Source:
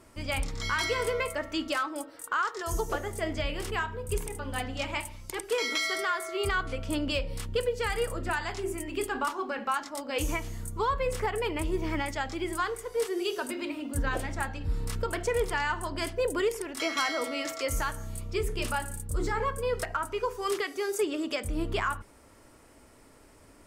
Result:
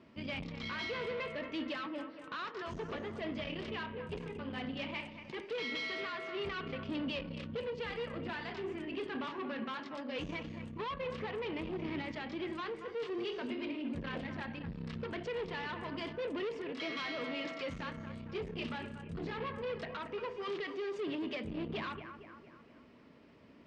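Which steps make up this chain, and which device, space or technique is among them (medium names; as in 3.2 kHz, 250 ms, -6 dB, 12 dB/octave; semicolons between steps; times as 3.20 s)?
analogue delay pedal into a guitar amplifier (bucket-brigade echo 230 ms, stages 4096, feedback 49%, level -14 dB; valve stage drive 32 dB, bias 0.4; cabinet simulation 96–4100 Hz, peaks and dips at 97 Hz -4 dB, 160 Hz +8 dB, 230 Hz +8 dB, 810 Hz -5 dB, 1.4 kHz -5 dB, 2.8 kHz +3 dB); trim -2.5 dB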